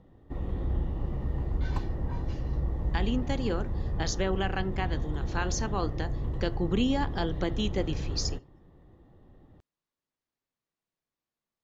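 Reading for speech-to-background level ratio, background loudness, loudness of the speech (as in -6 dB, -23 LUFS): 2.0 dB, -34.5 LUFS, -32.5 LUFS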